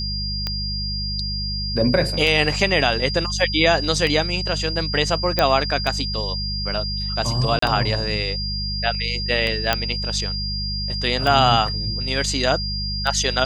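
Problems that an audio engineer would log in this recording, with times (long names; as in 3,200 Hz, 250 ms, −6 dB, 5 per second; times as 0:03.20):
mains hum 50 Hz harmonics 4 −28 dBFS
scratch tick 33 1/3 rpm −10 dBFS
whistle 4,800 Hz −26 dBFS
0:05.39: click −4 dBFS
0:07.59–0:07.62: drop-out 34 ms
0:09.73: click −3 dBFS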